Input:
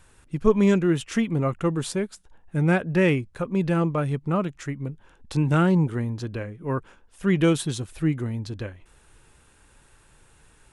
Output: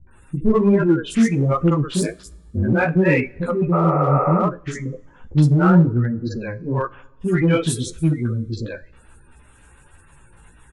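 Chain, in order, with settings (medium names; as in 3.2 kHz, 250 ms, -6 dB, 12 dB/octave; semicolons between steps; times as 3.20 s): spectral gate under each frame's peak -25 dB strong; three bands offset in time lows, mids, highs 70/110 ms, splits 430/4400 Hz; 2.01–2.73 s: ring modulator 52 Hz; chorus voices 2, 1.2 Hz, delay 15 ms, depth 3 ms; in parallel at -9 dB: hard clipper -26 dBFS, distortion -8 dB; on the sum: two-slope reverb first 0.34 s, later 1.8 s, from -18 dB, DRR 15 dB; 3.76–4.37 s: spectral replace 400–2700 Hz after; trim +7.5 dB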